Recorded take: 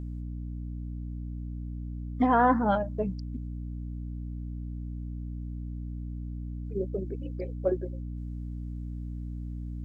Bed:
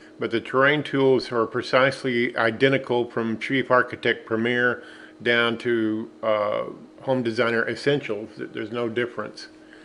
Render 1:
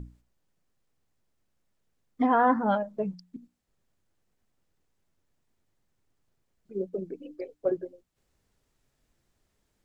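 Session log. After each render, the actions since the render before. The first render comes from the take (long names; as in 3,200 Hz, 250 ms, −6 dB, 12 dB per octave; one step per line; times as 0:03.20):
mains-hum notches 60/120/180/240/300 Hz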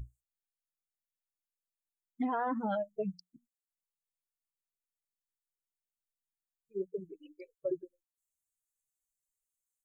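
spectral dynamics exaggerated over time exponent 2
brickwall limiter −25.5 dBFS, peak gain reduction 11 dB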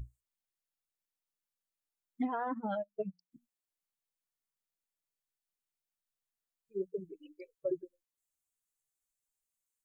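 0:02.25–0:03.32: expander for the loud parts 2.5 to 1, over −42 dBFS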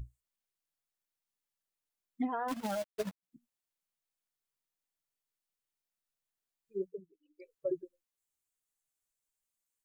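0:02.48–0:03.23: log-companded quantiser 4 bits
0:06.83–0:07.52: duck −20 dB, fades 0.24 s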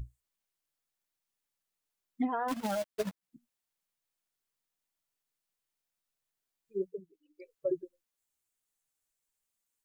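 level +2.5 dB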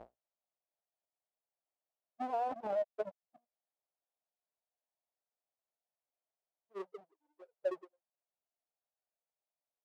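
each half-wave held at its own peak
resonant band-pass 660 Hz, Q 3.5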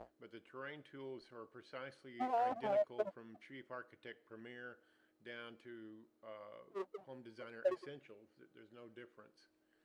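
mix in bed −30.5 dB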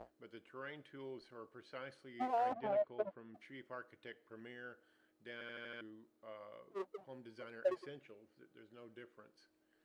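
0:02.53–0:03.34: high-frequency loss of the air 250 metres
0:05.33: stutter in place 0.08 s, 6 plays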